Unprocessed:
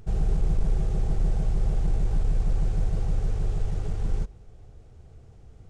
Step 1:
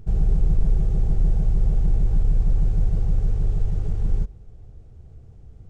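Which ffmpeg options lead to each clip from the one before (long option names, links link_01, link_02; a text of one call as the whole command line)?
ffmpeg -i in.wav -af "lowshelf=frequency=390:gain=10,volume=-5dB" out.wav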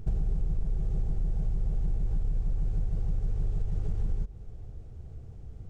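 ffmpeg -i in.wav -af "acompressor=threshold=-25dB:ratio=10,volume=1dB" out.wav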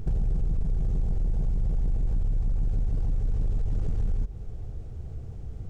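ffmpeg -i in.wav -af "asoftclip=type=tanh:threshold=-26.5dB,volume=6.5dB" out.wav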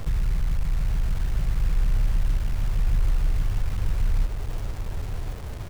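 ffmpeg -i in.wav -filter_complex "[0:a]acrossover=split=160[link_01][link_02];[link_02]acompressor=threshold=-49dB:ratio=6[link_03];[link_01][link_03]amix=inputs=2:normalize=0,acrusher=bits=6:mix=0:aa=0.000001,aecho=1:1:1085:0.447,volume=2dB" out.wav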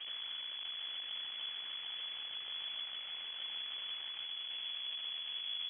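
ffmpeg -i in.wav -af "afftfilt=real='re*lt(hypot(re,im),0.398)':imag='im*lt(hypot(re,im),0.398)':win_size=1024:overlap=0.75,aeval=exprs='abs(val(0))':channel_layout=same,lowpass=frequency=2900:width_type=q:width=0.5098,lowpass=frequency=2900:width_type=q:width=0.6013,lowpass=frequency=2900:width_type=q:width=0.9,lowpass=frequency=2900:width_type=q:width=2.563,afreqshift=-3400,volume=-7dB" out.wav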